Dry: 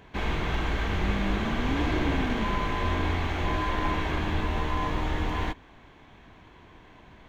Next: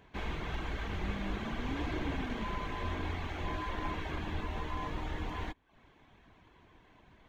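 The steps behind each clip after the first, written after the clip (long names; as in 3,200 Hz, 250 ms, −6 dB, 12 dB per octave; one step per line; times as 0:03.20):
reverb reduction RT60 0.52 s
level −8 dB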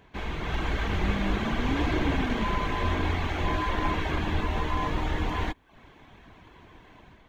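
automatic gain control gain up to 6 dB
level +3.5 dB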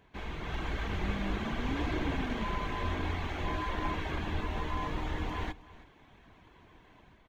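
single-tap delay 318 ms −18.5 dB
level −6.5 dB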